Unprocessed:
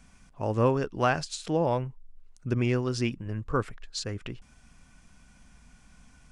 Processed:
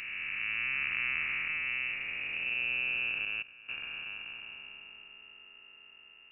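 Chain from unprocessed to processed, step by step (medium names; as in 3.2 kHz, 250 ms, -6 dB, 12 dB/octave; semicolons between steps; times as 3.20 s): spectral blur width 1280 ms; 3.25–3.69 s: level held to a coarse grid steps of 18 dB; frequency inversion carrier 2.8 kHz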